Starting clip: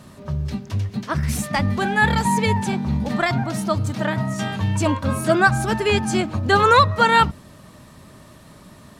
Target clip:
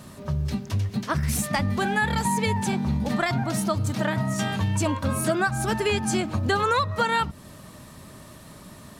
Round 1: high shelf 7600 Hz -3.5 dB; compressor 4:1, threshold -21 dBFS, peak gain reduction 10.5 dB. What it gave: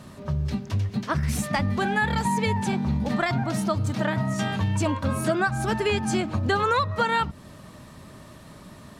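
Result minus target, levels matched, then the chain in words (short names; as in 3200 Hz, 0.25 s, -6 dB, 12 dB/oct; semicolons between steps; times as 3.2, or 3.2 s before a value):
8000 Hz band -4.5 dB
high shelf 7600 Hz +6.5 dB; compressor 4:1, threshold -21 dBFS, peak gain reduction 10.5 dB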